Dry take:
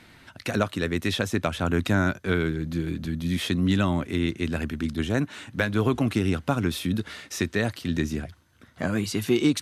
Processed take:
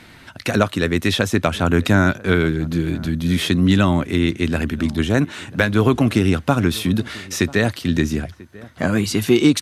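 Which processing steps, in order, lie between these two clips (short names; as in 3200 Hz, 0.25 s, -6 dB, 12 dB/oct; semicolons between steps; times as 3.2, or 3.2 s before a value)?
outdoor echo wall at 170 m, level -21 dB; gain +7.5 dB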